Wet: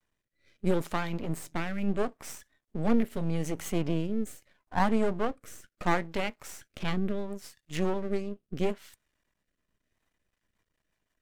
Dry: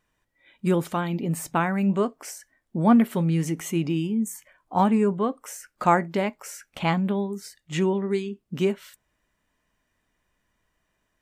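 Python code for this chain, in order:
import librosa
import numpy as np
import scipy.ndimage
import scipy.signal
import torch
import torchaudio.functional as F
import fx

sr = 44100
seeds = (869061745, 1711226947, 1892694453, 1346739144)

y = np.maximum(x, 0.0)
y = fx.vibrato(y, sr, rate_hz=0.62, depth_cents=24.0)
y = fx.rotary_switch(y, sr, hz=0.75, then_hz=6.0, switch_at_s=9.78)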